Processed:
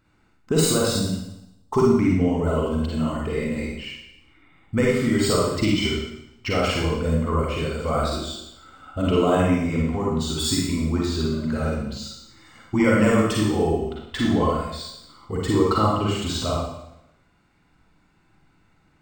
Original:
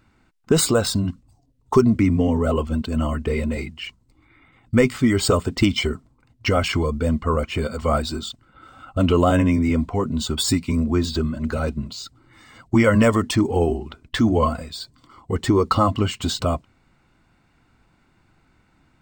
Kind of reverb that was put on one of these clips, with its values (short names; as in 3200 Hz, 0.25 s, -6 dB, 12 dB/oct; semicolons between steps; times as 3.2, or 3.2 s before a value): Schroeder reverb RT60 0.83 s, DRR -4 dB; gain -6.5 dB